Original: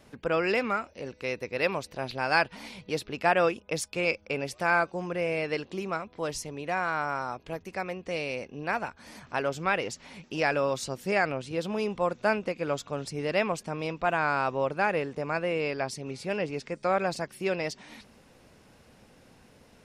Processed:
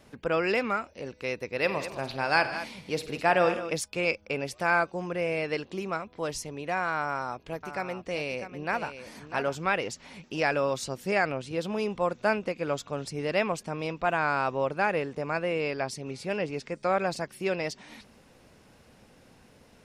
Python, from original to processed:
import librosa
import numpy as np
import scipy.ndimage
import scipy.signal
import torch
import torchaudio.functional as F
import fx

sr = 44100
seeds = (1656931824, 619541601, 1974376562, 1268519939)

y = fx.echo_multitap(x, sr, ms=(50, 94, 151, 160, 211), db=(-14.0, -16.5, -17.5, -19.0, -12.5), at=(1.63, 3.75), fade=0.02)
y = fx.echo_single(y, sr, ms=649, db=-10.5, at=(6.98, 9.66))